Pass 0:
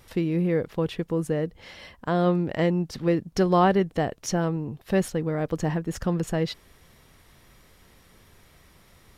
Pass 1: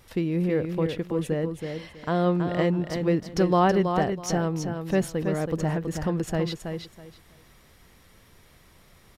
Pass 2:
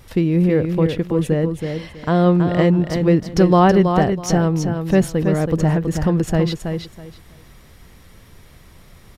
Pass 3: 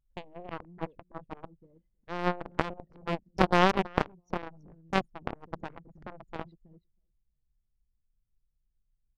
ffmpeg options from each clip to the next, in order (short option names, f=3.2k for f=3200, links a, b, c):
-af "aecho=1:1:325|650|975:0.473|0.0994|0.0209,volume=-1dB"
-af "lowshelf=f=220:g=6.5,volume=6dB"
-af "aeval=exprs='0.891*(cos(1*acos(clip(val(0)/0.891,-1,1)))-cos(1*PI/2))+0.355*(cos(3*acos(clip(val(0)/0.891,-1,1)))-cos(3*PI/2))+0.02*(cos(5*acos(clip(val(0)/0.891,-1,1)))-cos(5*PI/2))':c=same,anlmdn=0.398,volume=-3dB"